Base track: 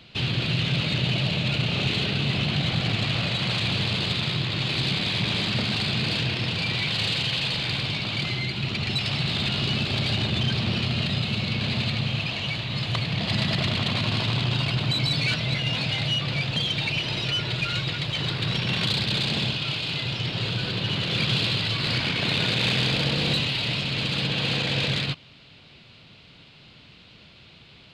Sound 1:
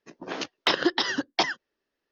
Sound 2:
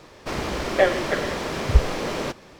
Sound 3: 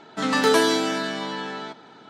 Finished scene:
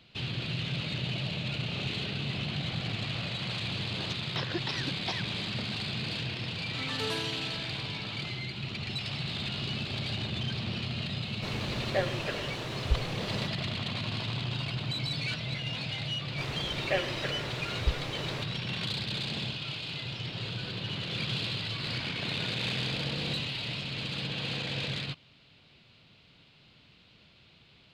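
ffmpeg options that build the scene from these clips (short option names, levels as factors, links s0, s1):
-filter_complex "[2:a]asplit=2[s0][s1];[0:a]volume=0.355[s2];[1:a]alimiter=limit=0.224:level=0:latency=1:release=71[s3];[s1]equalizer=f=2400:w=1.5:g=5[s4];[s3]atrim=end=2.11,asetpts=PTS-STARTPTS,volume=0.299,afade=t=in:d=0.004:c=hsin,afade=t=out:st=2.106:d=0.004:c=hsin,adelay=162729S[s5];[3:a]atrim=end=2.09,asetpts=PTS-STARTPTS,volume=0.126,afade=t=in:d=0.004:c=hsin,afade=t=out:st=2.086:d=0.004:c=hsin,adelay=6560[s6];[s0]atrim=end=2.59,asetpts=PTS-STARTPTS,volume=0.266,afade=t=in:d=0.004:c=hsin,afade=t=out:st=2.586:d=0.004:c=hsin,adelay=11160[s7];[s4]atrim=end=2.59,asetpts=PTS-STARTPTS,volume=0.237,afade=t=in:d=0.004:c=hsin,afade=t=out:st=2.586:d=0.004:c=hsin,adelay=16120[s8];[s2][s5][s6][s7][s8]amix=inputs=5:normalize=0"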